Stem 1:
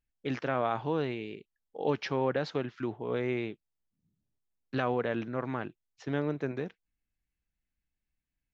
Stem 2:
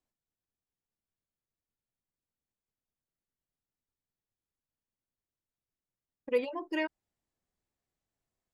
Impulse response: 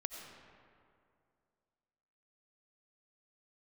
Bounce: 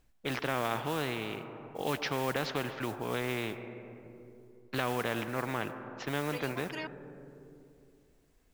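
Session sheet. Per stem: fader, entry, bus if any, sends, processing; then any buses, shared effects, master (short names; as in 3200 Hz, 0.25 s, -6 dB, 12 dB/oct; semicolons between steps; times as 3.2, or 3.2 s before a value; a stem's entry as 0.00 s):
0.0 dB, 0.00 s, send -10.5 dB, LPF 1700 Hz 6 dB/oct; modulation noise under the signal 35 dB
-0.5 dB, 0.00 s, no send, auto duck -11 dB, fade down 0.25 s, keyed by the first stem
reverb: on, RT60 2.4 s, pre-delay 50 ms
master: spectral compressor 2:1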